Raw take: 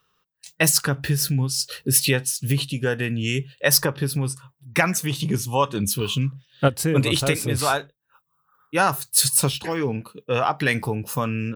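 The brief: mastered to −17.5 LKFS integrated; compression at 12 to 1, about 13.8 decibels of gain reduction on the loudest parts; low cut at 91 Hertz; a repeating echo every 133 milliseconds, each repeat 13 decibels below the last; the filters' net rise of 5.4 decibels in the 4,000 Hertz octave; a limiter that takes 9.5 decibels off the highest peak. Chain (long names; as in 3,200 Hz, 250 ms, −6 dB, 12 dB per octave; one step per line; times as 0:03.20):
high-pass filter 91 Hz
parametric band 4,000 Hz +7 dB
downward compressor 12 to 1, threshold −25 dBFS
brickwall limiter −19.5 dBFS
repeating echo 133 ms, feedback 22%, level −13 dB
level +13.5 dB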